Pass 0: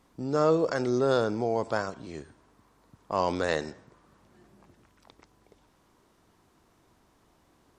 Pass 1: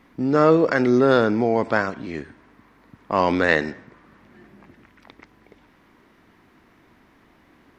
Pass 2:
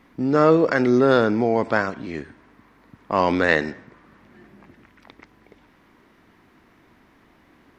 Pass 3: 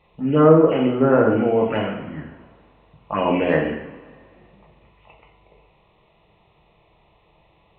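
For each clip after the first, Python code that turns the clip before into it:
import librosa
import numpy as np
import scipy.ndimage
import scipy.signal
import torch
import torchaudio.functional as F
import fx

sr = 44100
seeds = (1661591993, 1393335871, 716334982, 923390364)

y1 = fx.graphic_eq_10(x, sr, hz=(250, 2000, 8000), db=(7, 11, -10))
y1 = F.gain(torch.from_numpy(y1), 5.0).numpy()
y2 = y1
y3 = fx.freq_compress(y2, sr, knee_hz=2400.0, ratio=4.0)
y3 = fx.env_phaser(y3, sr, low_hz=260.0, high_hz=2800.0, full_db=-12.5)
y3 = fx.rev_double_slope(y3, sr, seeds[0], early_s=0.72, late_s=2.1, knee_db=-17, drr_db=-1.5)
y3 = F.gain(torch.from_numpy(y3), -1.0).numpy()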